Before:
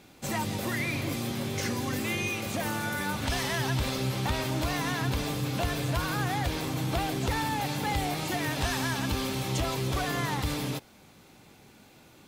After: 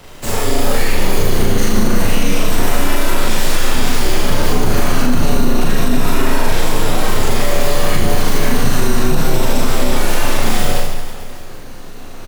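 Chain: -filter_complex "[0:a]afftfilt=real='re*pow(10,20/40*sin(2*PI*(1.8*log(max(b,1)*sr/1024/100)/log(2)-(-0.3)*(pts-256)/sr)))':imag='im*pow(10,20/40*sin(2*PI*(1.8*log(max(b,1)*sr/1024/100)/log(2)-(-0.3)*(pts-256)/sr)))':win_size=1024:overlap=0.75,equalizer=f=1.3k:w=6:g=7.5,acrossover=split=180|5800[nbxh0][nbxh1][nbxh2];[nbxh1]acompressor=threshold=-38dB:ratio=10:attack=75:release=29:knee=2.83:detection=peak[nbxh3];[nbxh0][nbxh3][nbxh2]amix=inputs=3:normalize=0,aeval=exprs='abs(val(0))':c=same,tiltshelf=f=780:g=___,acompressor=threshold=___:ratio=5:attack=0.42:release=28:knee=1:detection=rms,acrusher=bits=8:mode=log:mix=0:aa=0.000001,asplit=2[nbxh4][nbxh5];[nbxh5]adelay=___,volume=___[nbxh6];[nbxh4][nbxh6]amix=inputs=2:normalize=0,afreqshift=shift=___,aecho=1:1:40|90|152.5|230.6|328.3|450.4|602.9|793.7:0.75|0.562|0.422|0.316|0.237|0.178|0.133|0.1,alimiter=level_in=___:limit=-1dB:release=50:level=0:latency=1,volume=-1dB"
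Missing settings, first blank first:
5, -23dB, 34, -6dB, -13, 14.5dB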